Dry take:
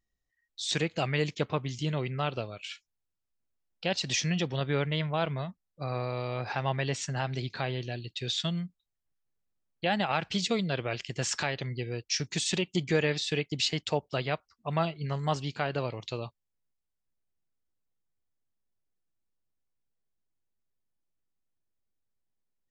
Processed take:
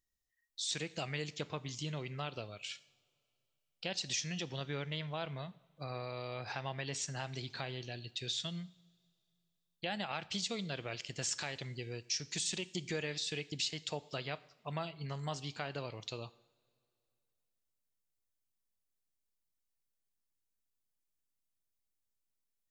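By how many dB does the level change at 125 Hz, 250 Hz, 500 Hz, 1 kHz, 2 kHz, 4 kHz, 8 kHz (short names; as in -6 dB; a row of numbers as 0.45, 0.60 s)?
-10.5, -11.0, -10.5, -10.5, -8.5, -6.0, -3.5 dB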